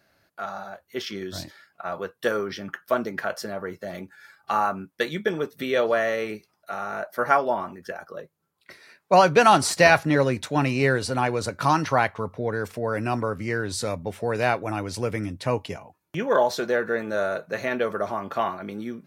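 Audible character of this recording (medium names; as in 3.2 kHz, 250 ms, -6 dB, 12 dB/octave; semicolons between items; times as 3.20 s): noise floor -71 dBFS; spectral tilt -5.0 dB/octave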